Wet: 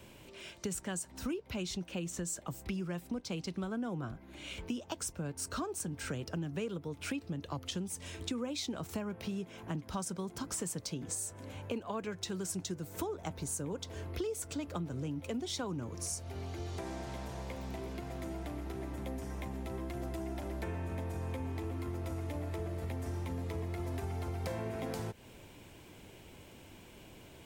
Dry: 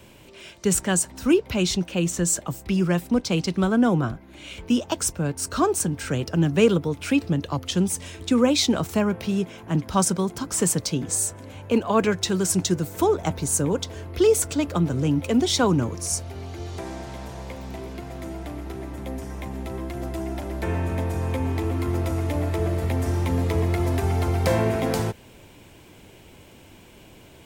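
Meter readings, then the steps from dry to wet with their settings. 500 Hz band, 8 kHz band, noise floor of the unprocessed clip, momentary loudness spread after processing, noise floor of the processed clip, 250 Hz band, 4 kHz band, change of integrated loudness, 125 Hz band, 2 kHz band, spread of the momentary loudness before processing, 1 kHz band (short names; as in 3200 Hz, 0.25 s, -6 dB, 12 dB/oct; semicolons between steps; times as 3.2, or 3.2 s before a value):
-16.5 dB, -14.5 dB, -49 dBFS, 7 LU, -55 dBFS, -15.5 dB, -14.0 dB, -15.5 dB, -14.5 dB, -14.0 dB, 15 LU, -15.0 dB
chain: compressor 6:1, threshold -30 dBFS, peak gain reduction 16.5 dB; gain -5.5 dB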